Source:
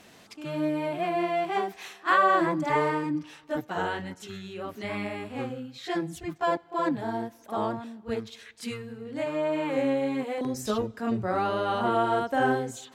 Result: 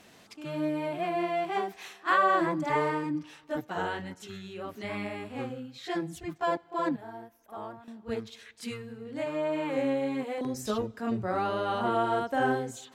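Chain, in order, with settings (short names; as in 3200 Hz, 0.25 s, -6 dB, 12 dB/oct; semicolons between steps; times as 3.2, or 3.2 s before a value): 6.96–7.88 graphic EQ 125/250/500/1000/2000/4000/8000 Hz -10/-10/-7/-5/-5/-10/-10 dB; gain -2.5 dB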